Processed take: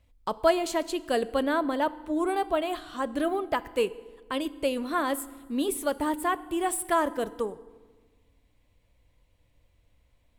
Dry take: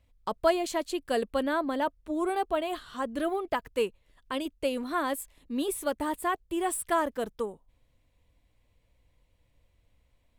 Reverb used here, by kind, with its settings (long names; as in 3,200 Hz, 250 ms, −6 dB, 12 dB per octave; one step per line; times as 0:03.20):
feedback delay network reverb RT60 1.4 s, low-frequency decay 1.35×, high-frequency decay 0.75×, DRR 15.5 dB
level +2 dB